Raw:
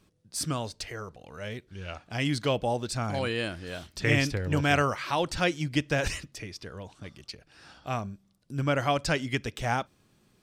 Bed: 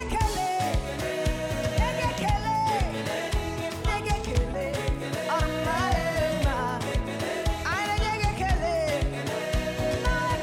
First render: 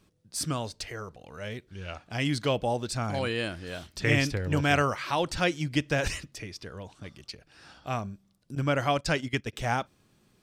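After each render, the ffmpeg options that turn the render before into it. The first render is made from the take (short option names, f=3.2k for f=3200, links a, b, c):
-filter_complex "[0:a]asettb=1/sr,asplit=3[a][b][c];[a]atrim=end=8.554[d];[b]atrim=start=8.55:end=9.53,asetpts=PTS-STARTPTS,afade=t=in:d=0.004:c=qsin,afade=t=out:st=0.976:d=0.004:c=qsin,agate=range=-12dB:threshold=-35dB:ratio=16:release=100:detection=peak[e];[c]atrim=start=9.526[f];[d][e]acrossfade=d=0.004:c1=hsin:c2=qsin[g];[g][f]acrossfade=d=0.004:c1=qsin:c2=hsin"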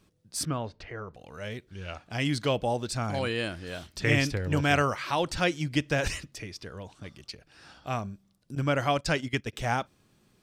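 -filter_complex "[0:a]asettb=1/sr,asplit=3[a][b][c];[a]atrim=end=0.454[d];[b]atrim=start=0.45:end=1.14,asetpts=PTS-STARTPTS,afade=t=in:d=0.004:c=qsin,afade=t=out:st=0.686:d=0.004:c=qsin,lowpass=2.2k[e];[c]atrim=start=1.136[f];[d][e]acrossfade=d=0.004:c1=hsin:c2=qsin[g];[g][f]acrossfade=d=0.004:c1=qsin:c2=hsin"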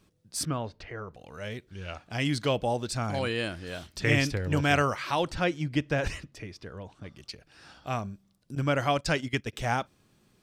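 -filter_complex "[0:a]asettb=1/sr,asplit=3[a][b][c];[a]atrim=end=5.314[d];[b]atrim=start=5.31:end=7.17,asetpts=PTS-STARTPTS,afade=t=in:d=0.004:c=qsin,afade=t=out:st=1.856:d=0.004:c=qsin,highshelf=f=3.4k:g=-10[e];[c]atrim=start=7.166[f];[d][e]acrossfade=d=0.004:c1=hsin:c2=qsin[g];[g][f]acrossfade=d=0.004:c1=qsin:c2=hsin"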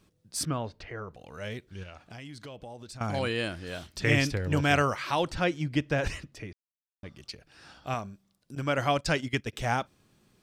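-filter_complex "[0:a]asettb=1/sr,asplit=3[a][b][c];[a]atrim=end=1.834[d];[b]atrim=start=1.83:end=3.01,asetpts=PTS-STARTPTS,afade=t=in:d=0.004:c=qsin,afade=t=out:st=1.176:d=0.004:c=qsin,acompressor=threshold=-42dB:ratio=5:attack=3.2:release=140:knee=1:detection=peak[e];[c]atrim=start=3.006[f];[d][e]acrossfade=d=0.004:c1=hsin:c2=qsin[g];[g][f]acrossfade=d=0.004:c1=qsin:c2=hsin,asettb=1/sr,asplit=3[h][i][j];[h]atrim=end=7.944[k];[i]atrim=start=7.94:end=8.78,asetpts=PTS-STARTPTS,afade=t=in:d=0.004:c=qsin,afade=t=out:st=0.836:d=0.004:c=qsin,lowshelf=f=270:g=-6.5[l];[j]atrim=start=8.776[m];[k][l]acrossfade=d=0.004:c1=hsin:c2=qsin[n];[n][m]acrossfade=d=0.004:c1=qsin:c2=hsin,asplit=3[o][p][q];[o]atrim=end=6.53,asetpts=PTS-STARTPTS,afade=t=out:st=6.526:d=0.004:c=hsin[r];[p]atrim=start=6.53:end=7.03,asetpts=PTS-STARTPTS,volume=0[s];[q]atrim=start=7.03,asetpts=PTS-STARTPTS,afade=t=in:d=0.004:c=hsin[t];[r][s][t]concat=n=3:v=0:a=1"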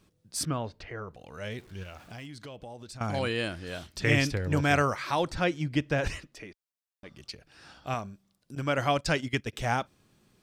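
-filter_complex "[0:a]asettb=1/sr,asplit=3[a][b][c];[a]atrim=end=1.584[d];[b]atrim=start=1.58:end=2.26,asetpts=PTS-STARTPTS,afade=t=in:d=0.004:c=qsin,afade=t=out:st=0.676:d=0.004:c=qsin,aeval=exprs='val(0)+0.5*0.00266*sgn(val(0))':c=same[e];[c]atrim=start=2.256[f];[d][e]acrossfade=d=0.004:c1=hsin:c2=qsin[g];[g][f]acrossfade=d=0.004:c1=qsin:c2=hsin,asettb=1/sr,asplit=3[h][i][j];[h]atrim=end=4.444[k];[i]atrim=start=4.44:end=5.4,asetpts=PTS-STARTPTS,afade=t=in:d=0.004:c=qsin,afade=t=out:st=0.956:d=0.004:c=qsin,equalizer=f=2.9k:t=o:w=0.22:g=-7.5[l];[j]atrim=start=5.396[m];[k][l]acrossfade=d=0.004:c1=hsin:c2=qsin[n];[n][m]acrossfade=d=0.004:c1=qsin:c2=hsin,asettb=1/sr,asplit=3[o][p][q];[o]atrim=end=6.204[r];[p]atrim=start=6.2:end=7.11,asetpts=PTS-STARTPTS,afade=t=in:d=0.004:c=qsin,afade=t=out:st=0.906:d=0.004:c=qsin,equalizer=f=95:w=0.77:g=-13[s];[q]atrim=start=7.106[t];[r][s]acrossfade=d=0.004:c1=hsin:c2=qsin[u];[u][t]acrossfade=d=0.004:c1=qsin:c2=hsin"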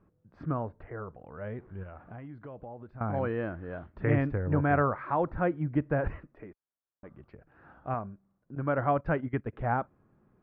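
-af "lowpass=f=1.5k:w=0.5412,lowpass=f=1.5k:w=1.3066"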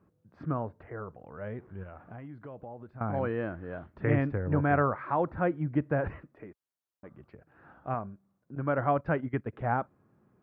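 -af "highpass=75"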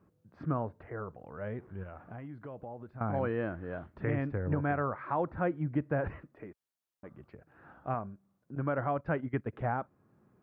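-af "alimiter=limit=-20.5dB:level=0:latency=1:release=457"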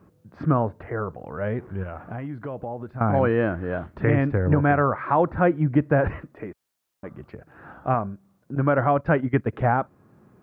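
-af "volume=11.5dB"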